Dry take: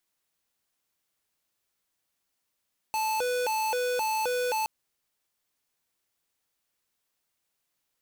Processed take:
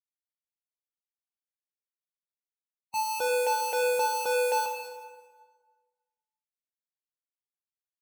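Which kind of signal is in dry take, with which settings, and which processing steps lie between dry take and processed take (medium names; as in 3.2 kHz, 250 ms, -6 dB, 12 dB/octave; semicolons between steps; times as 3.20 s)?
siren hi-lo 495–874 Hz 1.9 per s square -28 dBFS 1.72 s
expander on every frequency bin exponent 3; high-pass 64 Hz; plate-style reverb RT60 1.5 s, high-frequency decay 0.75×, DRR 0.5 dB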